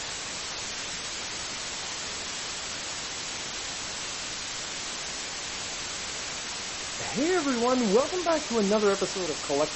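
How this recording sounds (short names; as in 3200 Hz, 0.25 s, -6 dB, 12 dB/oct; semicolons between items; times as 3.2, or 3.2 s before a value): random-step tremolo; a quantiser's noise floor 6-bit, dither triangular; MP3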